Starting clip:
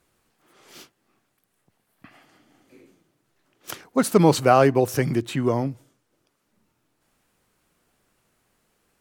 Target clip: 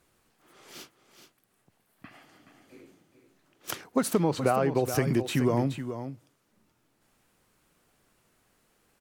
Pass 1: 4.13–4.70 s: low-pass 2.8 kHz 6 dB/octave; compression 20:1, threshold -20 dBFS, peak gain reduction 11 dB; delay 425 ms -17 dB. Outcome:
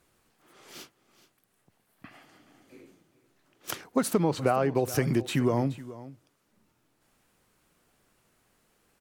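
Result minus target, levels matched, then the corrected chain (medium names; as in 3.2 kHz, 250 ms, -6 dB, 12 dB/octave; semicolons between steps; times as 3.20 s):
echo-to-direct -7 dB
4.13–4.70 s: low-pass 2.8 kHz 6 dB/octave; compression 20:1, threshold -20 dBFS, peak gain reduction 11 dB; delay 425 ms -10 dB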